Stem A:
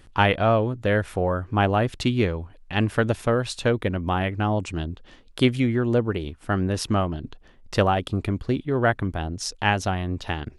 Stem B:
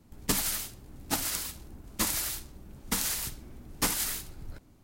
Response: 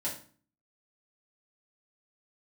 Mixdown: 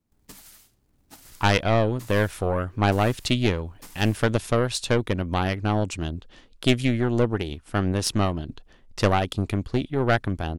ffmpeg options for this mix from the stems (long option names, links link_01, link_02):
-filter_complex "[0:a]aeval=exprs='(tanh(4.47*val(0)+0.75)-tanh(0.75))/4.47':channel_layout=same,adynamicequalizer=threshold=0.00562:dfrequency=3200:dqfactor=0.7:tfrequency=3200:tqfactor=0.7:attack=5:release=100:ratio=0.375:range=3.5:mode=boostabove:tftype=highshelf,adelay=1250,volume=3dB[link_01];[1:a]acrusher=bits=3:mode=log:mix=0:aa=0.000001,volume=-18.5dB[link_02];[link_01][link_02]amix=inputs=2:normalize=0"